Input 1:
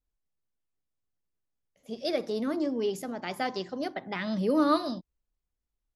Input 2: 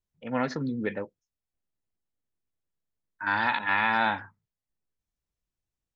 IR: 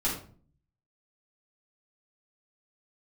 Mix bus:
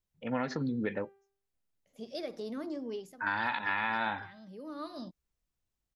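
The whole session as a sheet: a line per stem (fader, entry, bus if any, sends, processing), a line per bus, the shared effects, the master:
−5.5 dB, 0.10 s, no send, downward compressor 2 to 1, threshold −32 dBFS, peak gain reduction 7 dB; automatic ducking −14 dB, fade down 0.25 s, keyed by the second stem
+0.5 dB, 0.00 s, no send, hum removal 394.3 Hz, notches 11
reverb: not used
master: downward compressor 4 to 1, threshold −29 dBFS, peak gain reduction 8 dB

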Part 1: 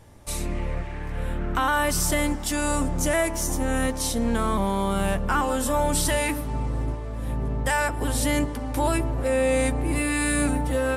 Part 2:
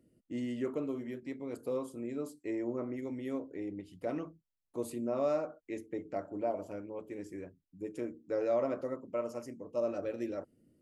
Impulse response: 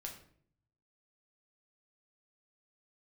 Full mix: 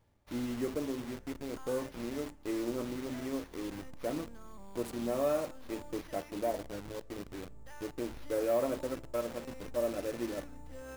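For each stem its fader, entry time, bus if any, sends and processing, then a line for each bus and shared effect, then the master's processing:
−19.0 dB, 0.00 s, no send, sample-rate reduction 7,900 Hz, jitter 0%; automatic ducking −10 dB, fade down 0.55 s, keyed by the second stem
0.0 dB, 0.00 s, send −14 dB, hold until the input has moved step −40 dBFS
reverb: on, RT60 0.60 s, pre-delay 6 ms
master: no processing

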